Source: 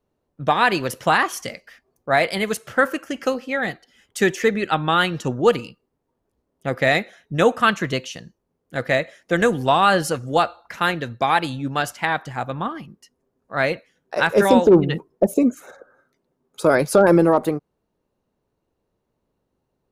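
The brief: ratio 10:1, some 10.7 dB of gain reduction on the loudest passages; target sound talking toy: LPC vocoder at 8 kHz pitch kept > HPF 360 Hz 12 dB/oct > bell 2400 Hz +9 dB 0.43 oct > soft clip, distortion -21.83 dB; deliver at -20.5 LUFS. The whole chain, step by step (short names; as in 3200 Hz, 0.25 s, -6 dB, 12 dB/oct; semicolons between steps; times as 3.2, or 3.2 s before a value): compressor 10:1, threshold -20 dBFS; LPC vocoder at 8 kHz pitch kept; HPF 360 Hz 12 dB/oct; bell 2400 Hz +9 dB 0.43 oct; soft clip -12 dBFS; gain +8 dB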